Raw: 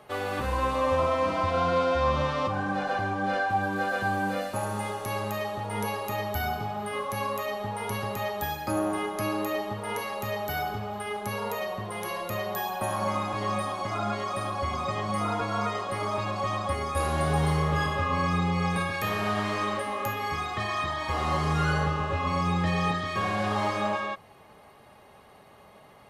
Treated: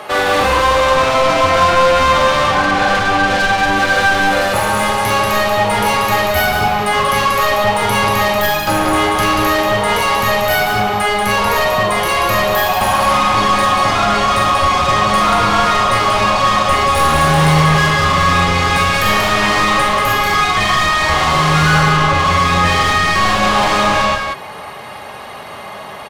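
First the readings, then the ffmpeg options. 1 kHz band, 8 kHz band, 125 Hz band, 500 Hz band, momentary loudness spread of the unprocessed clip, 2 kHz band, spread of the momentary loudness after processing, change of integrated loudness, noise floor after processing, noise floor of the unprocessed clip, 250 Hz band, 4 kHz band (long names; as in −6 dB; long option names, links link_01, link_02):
+16.5 dB, +19.0 dB, +11.5 dB, +13.5 dB, 7 LU, +18.5 dB, 4 LU, +16.0 dB, −30 dBFS, −53 dBFS, +11.5 dB, +20.5 dB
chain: -filter_complex "[0:a]asplit=2[link_01][link_02];[link_02]highpass=frequency=720:poles=1,volume=25dB,asoftclip=type=tanh:threshold=-13.5dB[link_03];[link_01][link_03]amix=inputs=2:normalize=0,lowpass=frequency=6200:poles=1,volume=-6dB,aecho=1:1:44|186:0.531|0.596,asubboost=boost=2:cutoff=200,volume=5.5dB"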